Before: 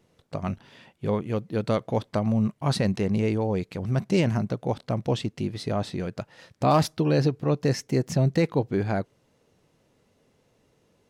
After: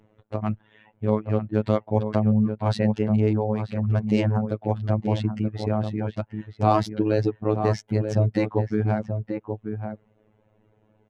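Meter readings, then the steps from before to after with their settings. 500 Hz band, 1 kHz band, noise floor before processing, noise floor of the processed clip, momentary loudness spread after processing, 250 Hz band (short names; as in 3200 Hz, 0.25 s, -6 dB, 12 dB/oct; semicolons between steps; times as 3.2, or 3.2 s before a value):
+1.5 dB, +1.5 dB, -67 dBFS, -65 dBFS, 10 LU, +2.0 dB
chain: Wiener smoothing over 9 samples; reverb removal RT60 0.97 s; high shelf 8300 Hz +10.5 dB; in parallel at -2.5 dB: compressor, threshold -31 dBFS, peak gain reduction 13.5 dB; on the sum: robotiser 107 Hz; tape spacing loss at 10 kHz 21 dB; outdoor echo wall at 160 m, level -7 dB; gain +3.5 dB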